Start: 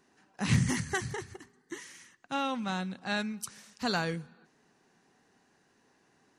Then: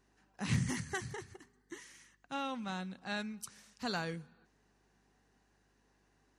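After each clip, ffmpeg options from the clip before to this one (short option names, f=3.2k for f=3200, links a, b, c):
-af "aeval=exprs='val(0)+0.000355*(sin(2*PI*50*n/s)+sin(2*PI*2*50*n/s)/2+sin(2*PI*3*50*n/s)/3+sin(2*PI*4*50*n/s)/4+sin(2*PI*5*50*n/s)/5)':c=same,volume=-6.5dB"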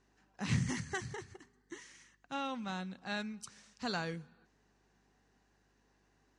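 -af "lowpass=f=8.3k:w=0.5412,lowpass=f=8.3k:w=1.3066"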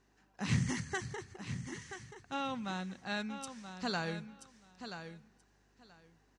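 -af "aecho=1:1:980|1960:0.335|0.0536,volume=1dB"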